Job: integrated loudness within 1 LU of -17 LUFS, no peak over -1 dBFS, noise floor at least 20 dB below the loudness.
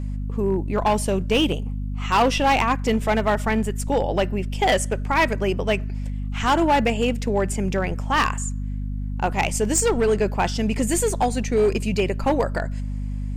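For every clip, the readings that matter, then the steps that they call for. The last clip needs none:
clipped samples 1.6%; clipping level -13.0 dBFS; hum 50 Hz; highest harmonic 250 Hz; hum level -25 dBFS; loudness -22.5 LUFS; peak level -13.0 dBFS; loudness target -17.0 LUFS
-> clip repair -13 dBFS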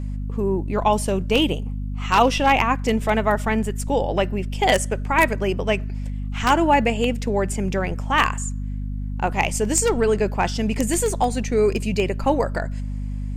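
clipped samples 0.0%; hum 50 Hz; highest harmonic 250 Hz; hum level -25 dBFS
-> de-hum 50 Hz, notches 5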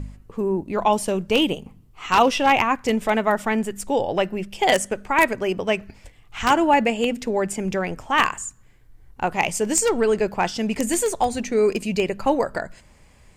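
hum not found; loudness -21.5 LUFS; peak level -3.0 dBFS; loudness target -17.0 LUFS
-> trim +4.5 dB; peak limiter -1 dBFS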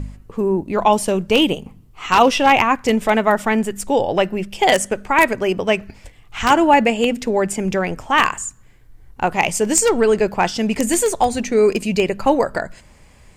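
loudness -17.5 LUFS; peak level -1.0 dBFS; noise floor -48 dBFS

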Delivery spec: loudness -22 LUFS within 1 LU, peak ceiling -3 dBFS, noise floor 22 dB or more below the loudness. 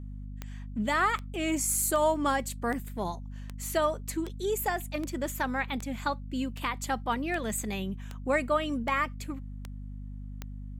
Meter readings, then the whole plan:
clicks found 14; hum 50 Hz; highest harmonic 250 Hz; hum level -37 dBFS; loudness -30.5 LUFS; peak level -15.5 dBFS; loudness target -22.0 LUFS
-> de-click; de-hum 50 Hz, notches 5; trim +8.5 dB

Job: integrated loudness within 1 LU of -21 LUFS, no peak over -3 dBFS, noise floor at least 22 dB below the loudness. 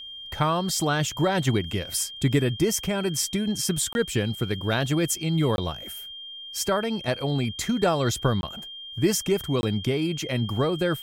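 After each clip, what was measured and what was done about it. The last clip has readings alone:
dropouts 4; longest dropout 21 ms; steady tone 3.2 kHz; tone level -37 dBFS; loudness -25.5 LUFS; peak level -9.5 dBFS; loudness target -21.0 LUFS
-> interpolate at 3.93/5.56/8.41/9.61 s, 21 ms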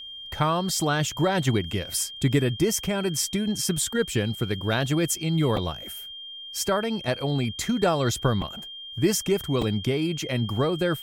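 dropouts 0; steady tone 3.2 kHz; tone level -37 dBFS
-> band-stop 3.2 kHz, Q 30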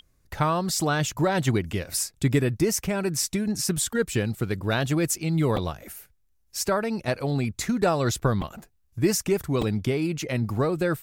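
steady tone not found; loudness -25.5 LUFS; peak level -9.5 dBFS; loudness target -21.0 LUFS
-> trim +4.5 dB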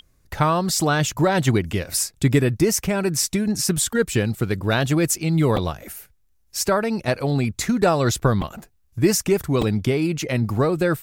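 loudness -21.0 LUFS; peak level -5.0 dBFS; noise floor -61 dBFS

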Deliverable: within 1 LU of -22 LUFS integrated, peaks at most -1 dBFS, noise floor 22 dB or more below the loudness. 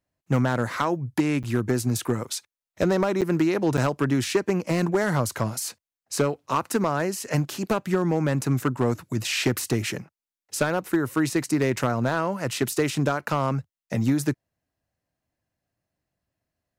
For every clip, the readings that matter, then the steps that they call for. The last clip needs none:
clipped samples 0.7%; clipping level -14.0 dBFS; dropouts 3; longest dropout 7.8 ms; loudness -25.5 LUFS; peak level -14.0 dBFS; loudness target -22.0 LUFS
-> clip repair -14 dBFS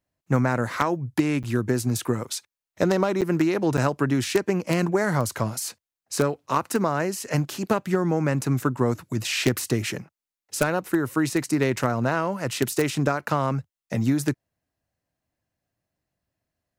clipped samples 0.0%; dropouts 3; longest dropout 7.8 ms
-> interpolate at 1.43/3.21/3.77 s, 7.8 ms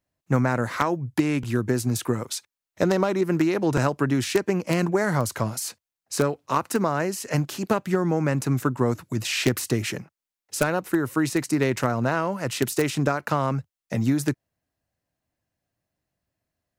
dropouts 0; loudness -25.0 LUFS; peak level -5.0 dBFS; loudness target -22.0 LUFS
-> trim +3 dB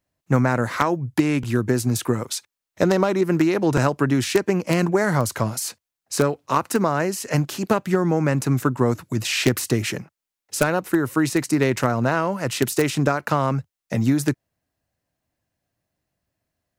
loudness -22.0 LUFS; peak level -2.0 dBFS; noise floor -87 dBFS

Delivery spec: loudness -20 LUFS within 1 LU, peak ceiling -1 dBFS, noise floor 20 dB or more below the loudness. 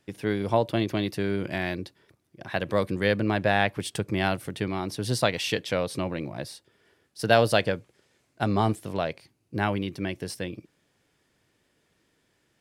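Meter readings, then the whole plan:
loudness -27.5 LUFS; peak level -4.0 dBFS; loudness target -20.0 LUFS
-> trim +7.5 dB; peak limiter -1 dBFS

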